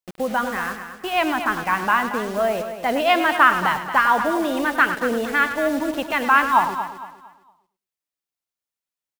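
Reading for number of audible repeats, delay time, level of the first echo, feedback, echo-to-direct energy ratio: 6, 103 ms, −11.0 dB, repeats not evenly spaced, −7.0 dB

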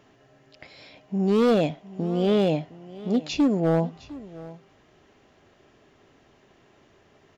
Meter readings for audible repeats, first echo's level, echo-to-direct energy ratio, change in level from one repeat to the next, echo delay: 1, −18.5 dB, −18.5 dB, repeats not evenly spaced, 710 ms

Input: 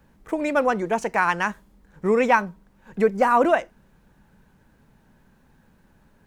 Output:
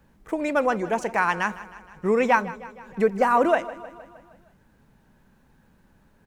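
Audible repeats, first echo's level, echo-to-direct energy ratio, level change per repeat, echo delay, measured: 4, −17.0 dB, −15.0 dB, −4.5 dB, 156 ms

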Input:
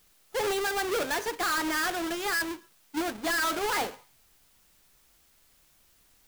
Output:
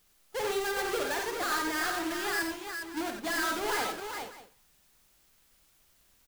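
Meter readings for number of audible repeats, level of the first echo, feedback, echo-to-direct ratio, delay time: 5, −8.0 dB, repeats not evenly spaced, −1.5 dB, 52 ms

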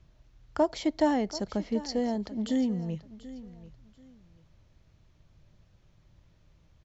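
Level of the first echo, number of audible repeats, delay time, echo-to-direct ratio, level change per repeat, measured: −16.5 dB, 2, 736 ms, −16.0 dB, −12.5 dB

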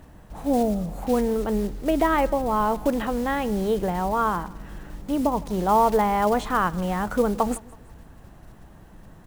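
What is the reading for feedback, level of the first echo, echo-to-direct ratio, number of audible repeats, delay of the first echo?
42%, −22.5 dB, −21.5 dB, 2, 161 ms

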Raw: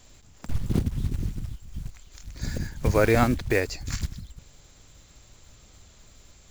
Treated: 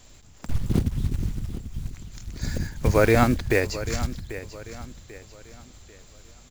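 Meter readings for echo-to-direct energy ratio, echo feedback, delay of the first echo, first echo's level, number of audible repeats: −13.5 dB, 37%, 791 ms, −14.0 dB, 3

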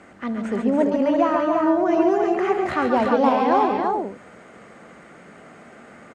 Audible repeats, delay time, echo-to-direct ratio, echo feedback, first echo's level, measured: 4, 69 ms, −0.5 dB, repeats not evenly spaced, −17.5 dB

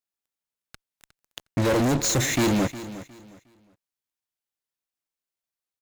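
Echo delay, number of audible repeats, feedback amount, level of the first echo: 360 ms, 2, 26%, −15.0 dB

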